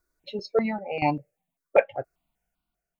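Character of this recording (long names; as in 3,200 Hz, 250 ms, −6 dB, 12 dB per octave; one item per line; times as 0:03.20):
tremolo saw down 0.98 Hz, depth 75%
notches that jump at a steady rate 5.1 Hz 790–1,800 Hz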